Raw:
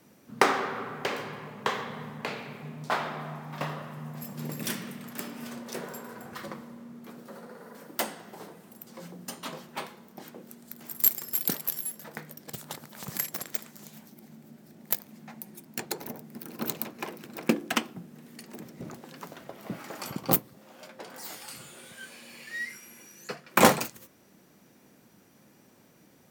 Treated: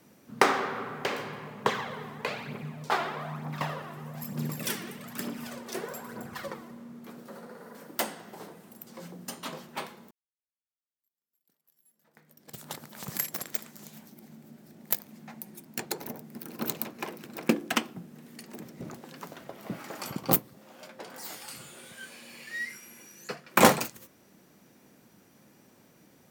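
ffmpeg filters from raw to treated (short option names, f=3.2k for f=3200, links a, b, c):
-filter_complex "[0:a]asettb=1/sr,asplit=3[a][b][c];[a]atrim=end=1.654[d];[b]atrim=start=1.65:end=6.71,asetpts=PTS-STARTPTS,afade=t=in:d=0.004:c=qsin,afade=t=out:st=5.056:d=0.004:c=qsin,aphaser=in_gain=1:out_gain=1:delay=3:decay=0.5:speed=1.1:type=triangular[e];[c]atrim=start=6.706[f];[d][e]acrossfade=d=0.004:c1=hsin:c2=qsin[g];[g][f]acrossfade=d=0.004:c1=qsin:c2=hsin,asplit=2[h][i];[h]atrim=end=10.11,asetpts=PTS-STARTPTS,afade=t=out:st=10.106:d=0.004:c=hsin[j];[i]atrim=start=10.11,asetpts=PTS-STARTPTS,afade=t=in:d=2.56:c=exp[k];[j][k]concat=n=2:v=0:a=1"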